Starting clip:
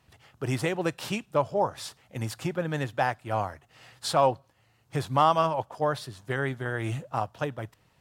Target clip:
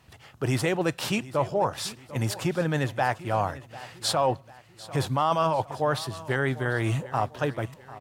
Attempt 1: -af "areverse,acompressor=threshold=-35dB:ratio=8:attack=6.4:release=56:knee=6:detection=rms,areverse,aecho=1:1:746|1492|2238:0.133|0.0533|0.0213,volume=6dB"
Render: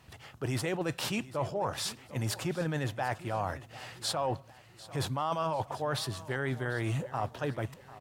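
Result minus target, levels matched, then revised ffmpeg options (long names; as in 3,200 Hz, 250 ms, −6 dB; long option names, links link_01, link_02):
downward compressor: peak gain reduction +8.5 dB
-af "areverse,acompressor=threshold=-25.5dB:ratio=8:attack=6.4:release=56:knee=6:detection=rms,areverse,aecho=1:1:746|1492|2238:0.133|0.0533|0.0213,volume=6dB"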